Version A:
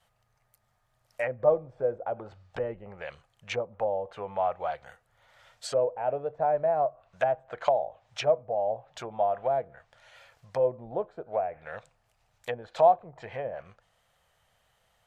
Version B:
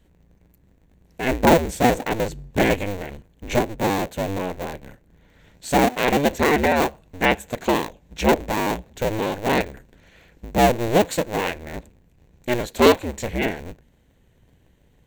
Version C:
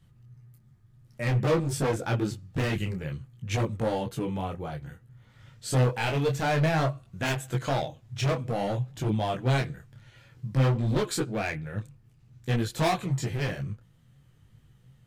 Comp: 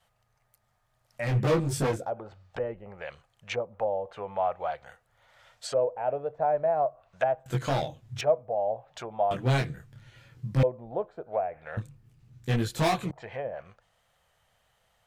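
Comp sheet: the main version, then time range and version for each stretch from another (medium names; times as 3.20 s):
A
1.24–1.99 s: from C, crossfade 0.24 s
7.46–8.21 s: from C
9.31–10.63 s: from C
11.77–13.11 s: from C
not used: B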